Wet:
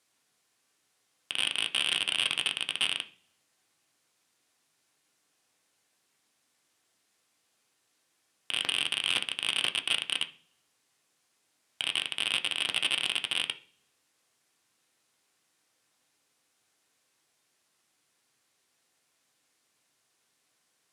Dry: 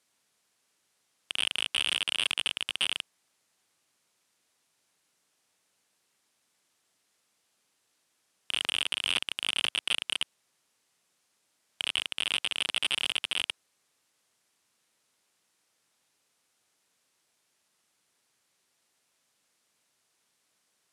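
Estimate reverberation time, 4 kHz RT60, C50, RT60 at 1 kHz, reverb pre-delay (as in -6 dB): 0.45 s, 0.60 s, 16.5 dB, 0.40 s, 3 ms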